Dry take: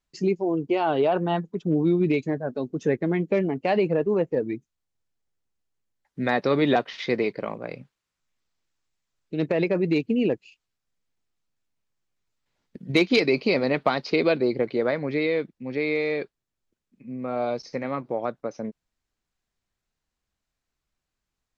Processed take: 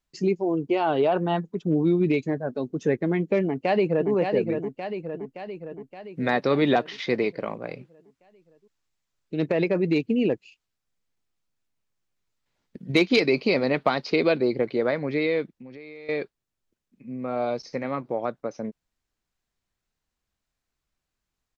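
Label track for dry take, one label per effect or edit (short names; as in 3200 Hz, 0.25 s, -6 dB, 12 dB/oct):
3.430000	4.110000	echo throw 0.57 s, feedback 60%, level -5.5 dB
15.480000	16.090000	compressor, threshold -40 dBFS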